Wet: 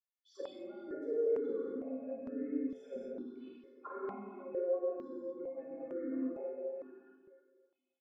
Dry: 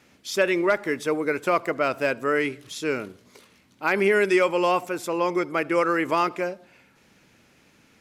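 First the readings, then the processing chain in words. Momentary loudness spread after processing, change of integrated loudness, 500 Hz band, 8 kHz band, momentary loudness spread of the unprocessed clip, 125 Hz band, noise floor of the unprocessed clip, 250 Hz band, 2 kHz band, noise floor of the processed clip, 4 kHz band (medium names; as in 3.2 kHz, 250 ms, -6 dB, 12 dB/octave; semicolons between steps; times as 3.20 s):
13 LU, -16.0 dB, -13.5 dB, under -35 dB, 10 LU, under -25 dB, -59 dBFS, -12.5 dB, -35.5 dB, under -85 dBFS, under -25 dB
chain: resonances exaggerated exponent 2; gate with hold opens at -45 dBFS; peaking EQ 710 Hz +6.5 dB 0.37 oct; inharmonic resonator 260 Hz, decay 0.21 s, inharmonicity 0.008; small resonant body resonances 380/680/1600 Hz, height 11 dB, ringing for 30 ms; transient shaper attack -7 dB, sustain +1 dB; auto-wah 230–3300 Hz, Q 6.2, down, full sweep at -34.5 dBFS; doubling 50 ms -6 dB; tape echo 314 ms, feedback 32%, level -7 dB, low-pass 1.3 kHz; gated-style reverb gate 280 ms flat, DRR -5.5 dB; stepped phaser 2.2 Hz 730–3200 Hz; trim +6.5 dB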